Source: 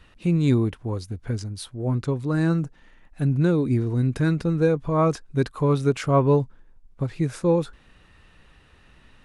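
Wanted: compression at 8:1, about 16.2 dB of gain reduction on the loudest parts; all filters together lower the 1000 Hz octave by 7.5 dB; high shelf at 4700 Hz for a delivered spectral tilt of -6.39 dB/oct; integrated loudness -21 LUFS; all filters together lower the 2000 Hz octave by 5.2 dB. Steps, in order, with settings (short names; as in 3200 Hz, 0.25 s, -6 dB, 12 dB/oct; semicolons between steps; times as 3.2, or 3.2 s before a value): bell 1000 Hz -8.5 dB; bell 2000 Hz -5 dB; high shelf 4700 Hz +8.5 dB; compressor 8:1, threshold -33 dBFS; gain +16.5 dB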